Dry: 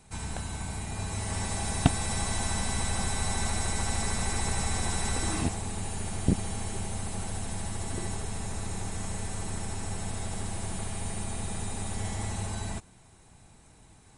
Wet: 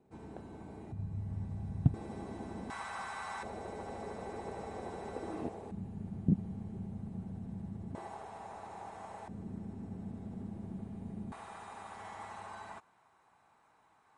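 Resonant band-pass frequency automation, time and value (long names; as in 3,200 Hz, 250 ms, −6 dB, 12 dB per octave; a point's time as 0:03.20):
resonant band-pass, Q 1.9
360 Hz
from 0:00.92 130 Hz
from 0:01.94 330 Hz
from 0:02.70 1,200 Hz
from 0:03.43 470 Hz
from 0:05.71 180 Hz
from 0:07.95 810 Hz
from 0:09.28 220 Hz
from 0:11.32 1,100 Hz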